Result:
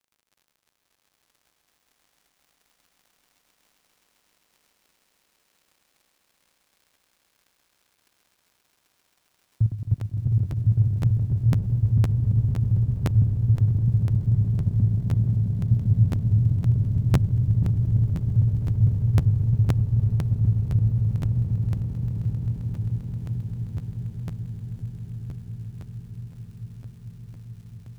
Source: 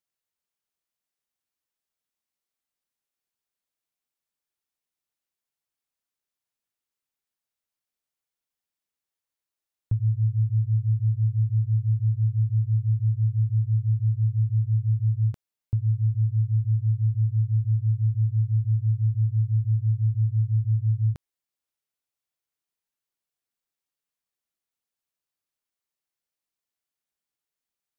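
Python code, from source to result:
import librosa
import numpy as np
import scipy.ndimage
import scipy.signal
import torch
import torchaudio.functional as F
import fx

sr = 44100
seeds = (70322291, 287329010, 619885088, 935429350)

p1 = fx.block_reorder(x, sr, ms=113.0, group=5)
p2 = fx.dereverb_blind(p1, sr, rt60_s=0.58)
p3 = fx.highpass(p2, sr, hz=77.0, slope=6)
p4 = fx.level_steps(p3, sr, step_db=12)
p5 = p4 + fx.echo_diffused(p4, sr, ms=1129, feedback_pct=72, wet_db=-9.5, dry=0)
p6 = fx.dmg_crackle(p5, sr, seeds[0], per_s=56.0, level_db=-55.0)
p7 = fx.echo_swell(p6, sr, ms=132, loudest=8, wet_db=-6.5)
p8 = fx.buffer_crackle(p7, sr, first_s=0.81, period_s=0.51, block=512, kind='repeat')
y = p8 * 10.0 ** (7.0 / 20.0)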